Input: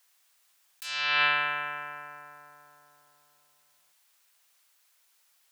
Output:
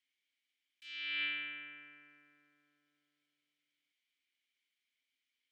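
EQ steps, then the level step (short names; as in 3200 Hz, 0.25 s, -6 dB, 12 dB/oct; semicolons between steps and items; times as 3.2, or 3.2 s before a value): vowel filter i; 0.0 dB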